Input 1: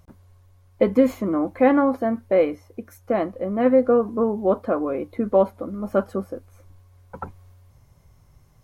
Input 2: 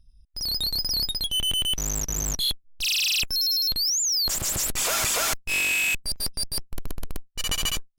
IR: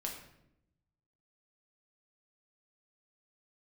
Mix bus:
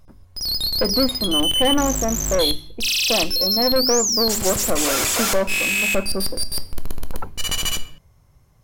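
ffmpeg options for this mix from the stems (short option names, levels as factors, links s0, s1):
-filter_complex "[0:a]bandreject=f=51.1:t=h:w=4,bandreject=f=102.2:t=h:w=4,bandreject=f=153.3:t=h:w=4,bandreject=f=204.4:t=h:w=4,bandreject=f=255.5:t=h:w=4,bandreject=f=306.6:t=h:w=4,bandreject=f=357.7:t=h:w=4,bandreject=f=408.8:t=h:w=4,aeval=exprs='(tanh(7.08*val(0)+0.5)-tanh(0.5))/7.08':c=same,volume=1.26[s0];[1:a]volume=1,asplit=2[s1][s2];[s2]volume=0.631[s3];[2:a]atrim=start_sample=2205[s4];[s3][s4]afir=irnorm=-1:irlink=0[s5];[s0][s1][s5]amix=inputs=3:normalize=0"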